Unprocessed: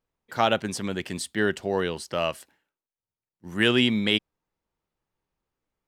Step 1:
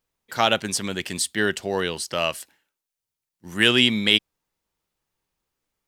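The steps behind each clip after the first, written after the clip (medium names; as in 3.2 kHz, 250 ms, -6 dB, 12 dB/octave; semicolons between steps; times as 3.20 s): treble shelf 2.2 kHz +10 dB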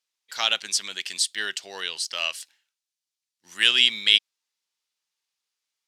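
band-pass filter 4.7 kHz, Q 1; trim +4 dB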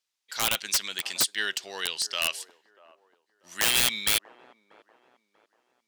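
integer overflow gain 14.5 dB; feedback echo behind a band-pass 639 ms, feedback 35%, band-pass 580 Hz, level -17 dB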